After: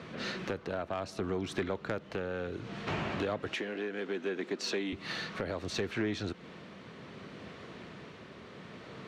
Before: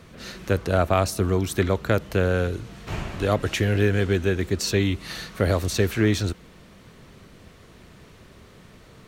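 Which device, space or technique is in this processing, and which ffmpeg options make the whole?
AM radio: -filter_complex "[0:a]highpass=160,lowpass=3.9k,acompressor=threshold=-35dB:ratio=4,asoftclip=type=tanh:threshold=-27dB,tremolo=f=0.66:d=0.28,asettb=1/sr,asplit=3[a][b][c];[a]atrim=end=3.544[d];[b]atrim=start=3.54:end=4.93,asetpts=PTS-STARTPTS,afade=t=in:d=0.004:c=qsin,afade=t=out:st=1.386:d=0.004:c=qsin,highpass=f=210:w=0.5412,highpass=f=210:w=1.3066[e];[c]atrim=start=4.926[f];[d][e]acrossfade=d=0.004:c1=hsin:c2=qsin[g];[g][f]acrossfade=d=0.004:c1=qsin:c2=hsin,volume=4.5dB"

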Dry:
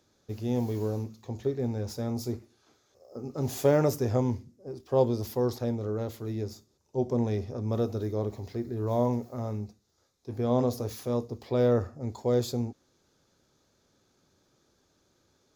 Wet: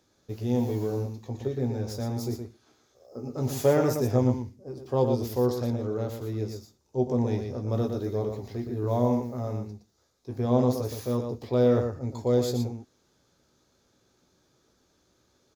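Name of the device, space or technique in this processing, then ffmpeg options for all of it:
slapback doubling: -filter_complex "[0:a]asplit=3[a][b][c];[b]adelay=16,volume=-7dB[d];[c]adelay=118,volume=-6dB[e];[a][d][e]amix=inputs=3:normalize=0"

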